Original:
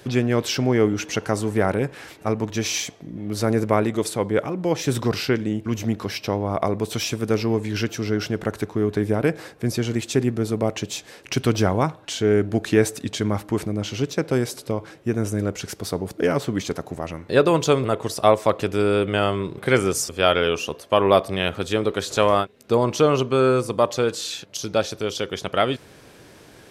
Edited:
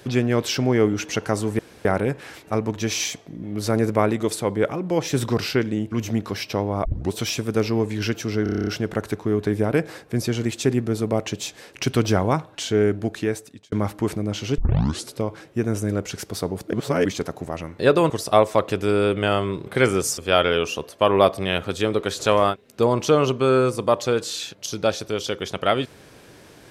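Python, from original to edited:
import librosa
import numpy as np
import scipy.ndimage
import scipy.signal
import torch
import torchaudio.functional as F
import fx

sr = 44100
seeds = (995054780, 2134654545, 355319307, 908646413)

y = fx.edit(x, sr, fx.insert_room_tone(at_s=1.59, length_s=0.26),
    fx.tape_start(start_s=6.59, length_s=0.27),
    fx.stutter(start_s=8.17, slice_s=0.03, count=9),
    fx.fade_out_span(start_s=12.26, length_s=0.96),
    fx.tape_start(start_s=14.08, length_s=0.5),
    fx.reverse_span(start_s=16.23, length_s=0.32),
    fx.cut(start_s=17.6, length_s=0.41), tone=tone)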